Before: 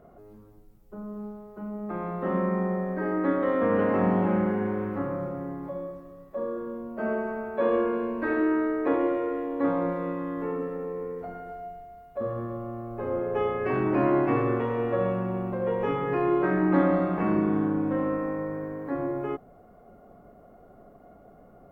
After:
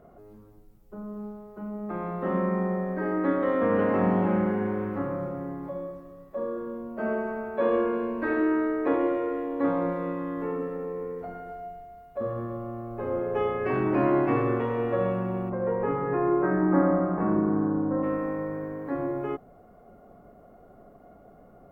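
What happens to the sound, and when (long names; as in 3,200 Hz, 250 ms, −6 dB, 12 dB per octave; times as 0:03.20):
0:15.49–0:18.02: low-pass filter 2,000 Hz → 1,400 Hz 24 dB per octave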